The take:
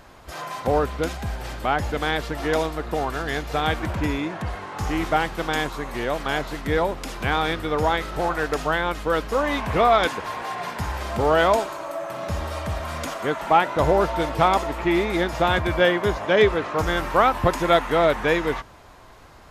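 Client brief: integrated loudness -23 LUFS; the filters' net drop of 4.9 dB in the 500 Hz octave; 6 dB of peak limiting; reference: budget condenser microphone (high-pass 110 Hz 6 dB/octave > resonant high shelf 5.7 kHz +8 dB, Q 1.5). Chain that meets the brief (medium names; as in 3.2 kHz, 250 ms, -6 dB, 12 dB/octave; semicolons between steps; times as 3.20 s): peaking EQ 500 Hz -6 dB; peak limiter -12.5 dBFS; high-pass 110 Hz 6 dB/octave; resonant high shelf 5.7 kHz +8 dB, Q 1.5; trim +3.5 dB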